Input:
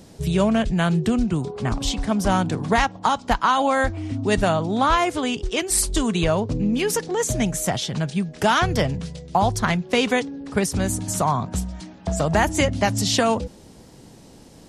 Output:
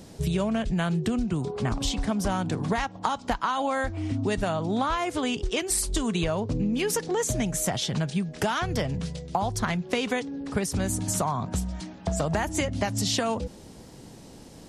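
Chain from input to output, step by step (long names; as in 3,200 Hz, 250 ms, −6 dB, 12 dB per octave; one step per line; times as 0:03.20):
downward compressor, threshold −23 dBFS, peak gain reduction 9.5 dB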